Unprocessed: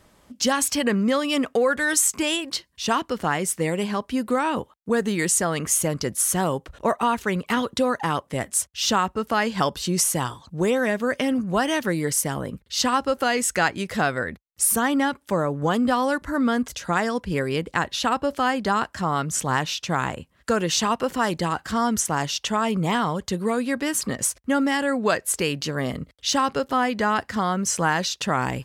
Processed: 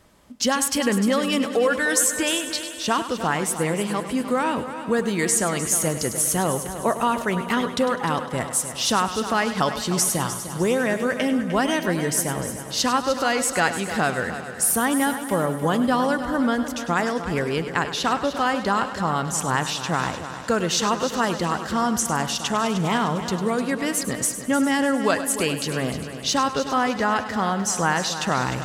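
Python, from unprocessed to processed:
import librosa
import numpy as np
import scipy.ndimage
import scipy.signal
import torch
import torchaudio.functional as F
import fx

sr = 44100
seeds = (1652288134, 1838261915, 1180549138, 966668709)

y = fx.echo_heads(x, sr, ms=101, heads='first and third', feedback_pct=59, wet_db=-12)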